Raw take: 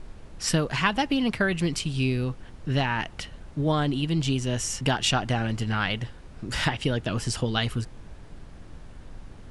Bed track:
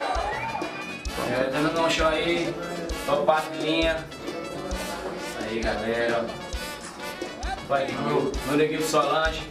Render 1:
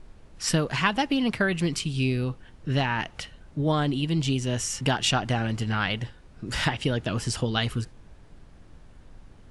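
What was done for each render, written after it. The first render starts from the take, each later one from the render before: noise print and reduce 6 dB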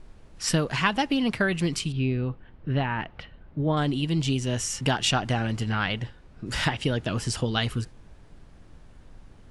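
1.92–3.77 air absorption 360 m; 5.69–6.45 high shelf 8400 Hz -> 5500 Hz -7.5 dB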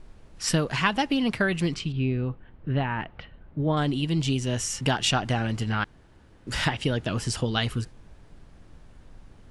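1.74–3.59 air absorption 120 m; 5.84–6.47 room tone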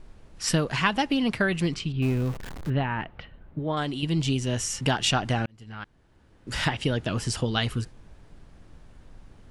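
2.02–2.7 zero-crossing step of -33 dBFS; 3.59–4.03 low shelf 340 Hz -8 dB; 5.46–6.73 fade in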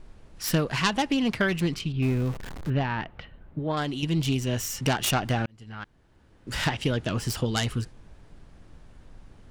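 self-modulated delay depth 0.15 ms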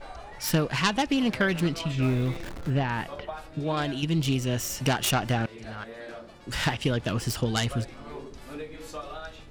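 add bed track -16.5 dB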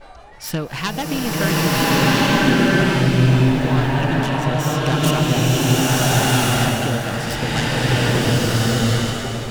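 bloom reverb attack 1.38 s, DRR -10.5 dB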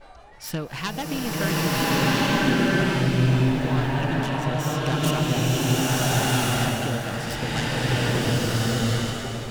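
gain -5.5 dB

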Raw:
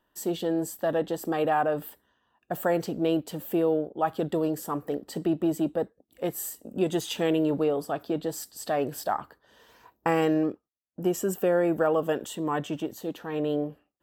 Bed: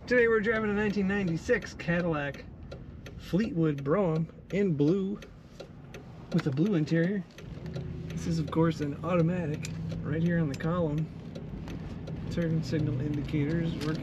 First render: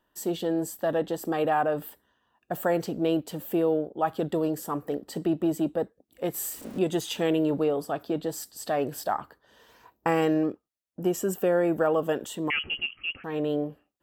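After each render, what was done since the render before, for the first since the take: 6.34–6.79 zero-crossing step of -40 dBFS; 12.5–13.24 inverted band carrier 3100 Hz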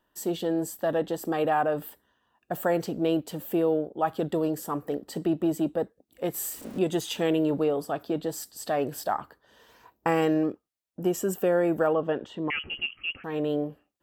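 11.93–12.77 air absorption 230 m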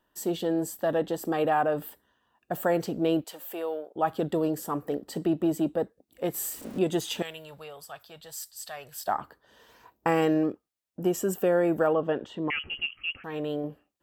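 3.24–3.96 HPF 700 Hz; 7.22–9.08 passive tone stack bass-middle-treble 10-0-10; 12.54–13.64 bell 300 Hz -4.5 dB 2.7 oct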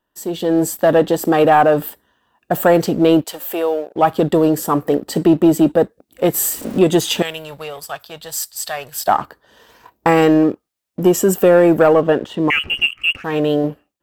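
sample leveller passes 1; AGC gain up to 11.5 dB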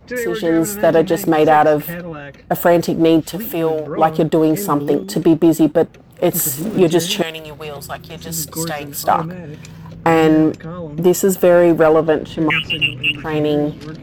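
add bed +0.5 dB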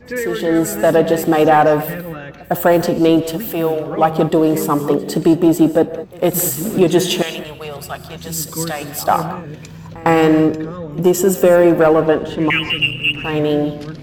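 reverse echo 0.105 s -22.5 dB; non-linear reverb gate 0.23 s rising, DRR 11 dB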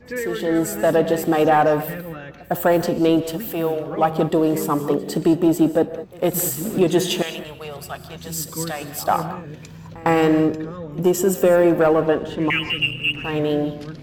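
gain -4.5 dB

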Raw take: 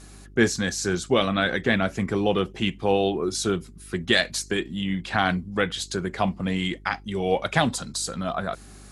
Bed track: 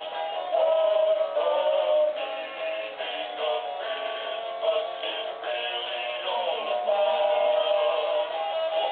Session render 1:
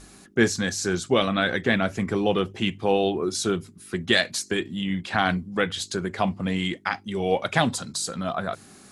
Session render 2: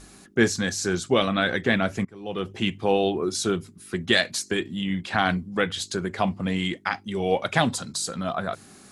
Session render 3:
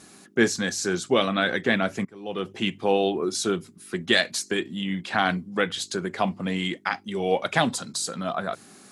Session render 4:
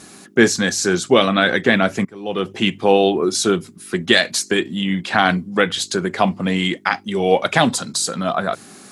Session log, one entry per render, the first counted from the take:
de-hum 50 Hz, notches 3
2.05–2.53 fade in quadratic, from -23.5 dB
HPF 160 Hz 12 dB/oct
gain +8 dB; limiter -1 dBFS, peak gain reduction 3 dB

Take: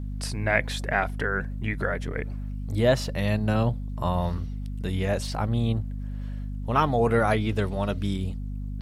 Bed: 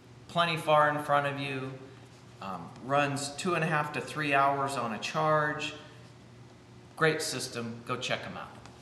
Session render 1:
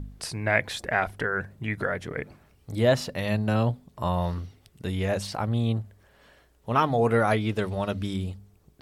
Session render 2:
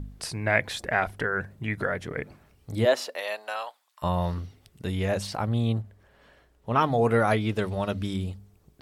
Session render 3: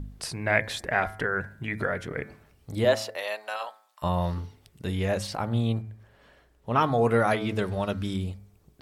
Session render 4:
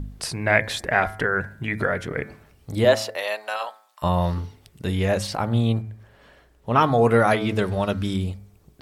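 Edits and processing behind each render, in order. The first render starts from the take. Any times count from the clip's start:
de-hum 50 Hz, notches 5
2.84–4.02 HPF 300 Hz -> 1200 Hz 24 dB/oct; 5.81–6.81 high shelf 4400 Hz -7 dB
de-hum 108.9 Hz, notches 22
gain +5 dB; limiter -3 dBFS, peak gain reduction 1.5 dB

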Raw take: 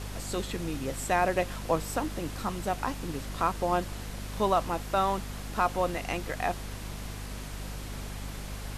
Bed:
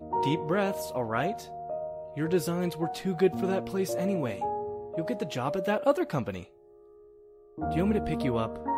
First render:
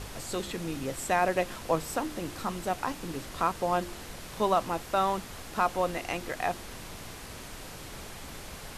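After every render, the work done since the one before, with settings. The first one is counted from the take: de-hum 50 Hz, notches 7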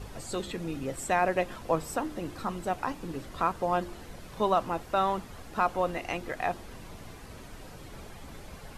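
denoiser 9 dB, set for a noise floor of -44 dBFS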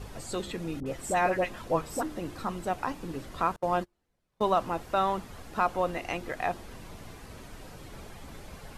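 0.8–2.03 dispersion highs, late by 59 ms, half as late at 1000 Hz; 3.56–4.55 gate -34 dBFS, range -34 dB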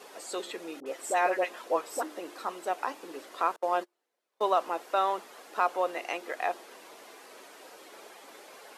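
HPF 360 Hz 24 dB/oct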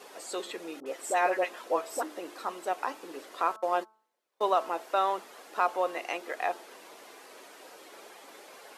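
de-hum 218.6 Hz, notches 7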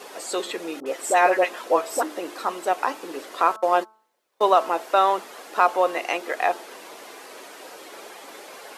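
gain +8.5 dB

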